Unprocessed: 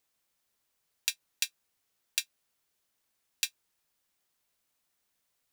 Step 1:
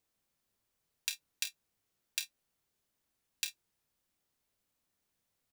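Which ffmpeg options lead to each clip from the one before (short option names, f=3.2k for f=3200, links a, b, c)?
-filter_complex "[0:a]lowshelf=f=470:g=9.5,asplit=2[a][b];[b]aecho=0:1:29|49:0.355|0.178[c];[a][c]amix=inputs=2:normalize=0,volume=-5.5dB"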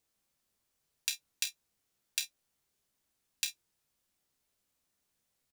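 -filter_complex "[0:a]equalizer=f=7.5k:w=0.52:g=3,asplit=2[a][b];[b]adelay=15,volume=-10.5dB[c];[a][c]amix=inputs=2:normalize=0"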